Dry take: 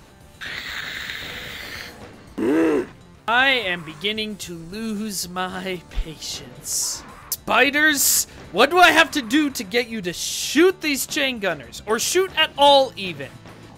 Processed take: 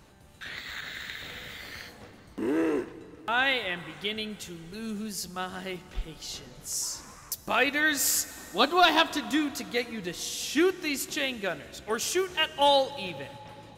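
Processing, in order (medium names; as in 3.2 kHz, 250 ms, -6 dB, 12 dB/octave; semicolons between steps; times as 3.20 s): 8.31–9.06 s: ten-band graphic EQ 125 Hz -12 dB, 250 Hz +7 dB, 500 Hz -5 dB, 1 kHz +7 dB, 2 kHz -9 dB, 4 kHz +10 dB, 8 kHz -12 dB; plate-style reverb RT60 3.6 s, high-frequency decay 0.8×, DRR 15.5 dB; trim -8.5 dB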